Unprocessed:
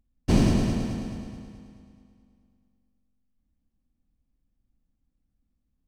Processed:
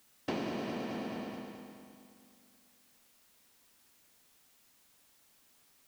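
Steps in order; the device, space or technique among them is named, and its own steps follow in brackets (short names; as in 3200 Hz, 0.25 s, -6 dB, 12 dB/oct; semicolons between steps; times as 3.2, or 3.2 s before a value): baby monitor (BPF 400–3300 Hz; compressor, threshold -42 dBFS, peak gain reduction 15.5 dB; white noise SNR 22 dB); gain +7.5 dB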